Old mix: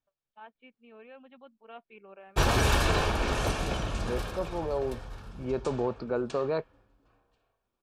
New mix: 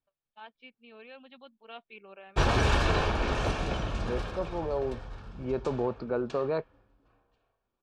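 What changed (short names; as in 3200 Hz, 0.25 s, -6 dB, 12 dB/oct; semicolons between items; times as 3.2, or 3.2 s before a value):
first voice: remove Gaussian blur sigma 3.6 samples; master: add air absorption 88 m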